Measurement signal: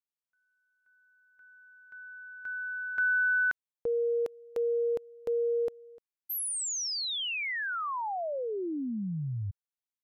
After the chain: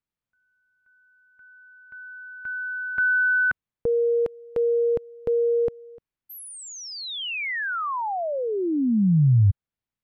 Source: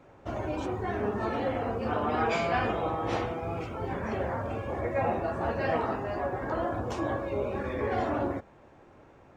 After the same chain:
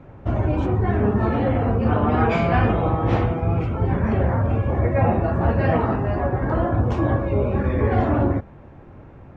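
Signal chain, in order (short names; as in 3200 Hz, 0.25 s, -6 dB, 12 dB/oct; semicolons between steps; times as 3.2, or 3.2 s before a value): tone controls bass +12 dB, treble -13 dB; gain +6 dB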